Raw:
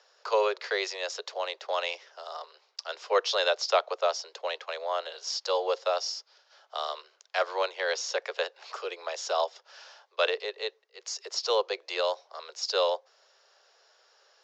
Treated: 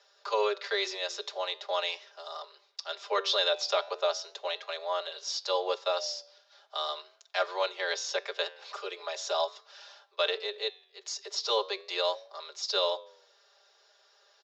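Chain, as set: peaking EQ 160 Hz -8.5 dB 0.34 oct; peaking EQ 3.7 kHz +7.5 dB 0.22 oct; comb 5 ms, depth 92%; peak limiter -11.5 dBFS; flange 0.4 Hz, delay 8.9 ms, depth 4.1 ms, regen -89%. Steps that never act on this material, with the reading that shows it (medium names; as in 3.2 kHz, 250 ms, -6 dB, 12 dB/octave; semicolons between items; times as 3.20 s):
peaking EQ 160 Hz: input has nothing below 340 Hz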